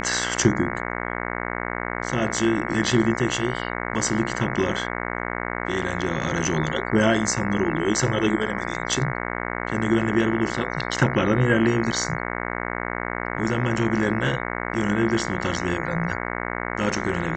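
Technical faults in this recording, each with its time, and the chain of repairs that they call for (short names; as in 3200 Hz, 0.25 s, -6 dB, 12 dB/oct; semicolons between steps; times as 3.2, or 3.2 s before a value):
buzz 60 Hz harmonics 37 -29 dBFS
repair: de-hum 60 Hz, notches 37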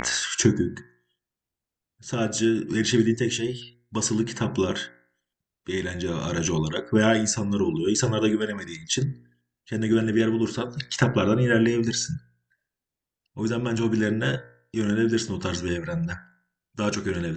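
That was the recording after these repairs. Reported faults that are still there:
none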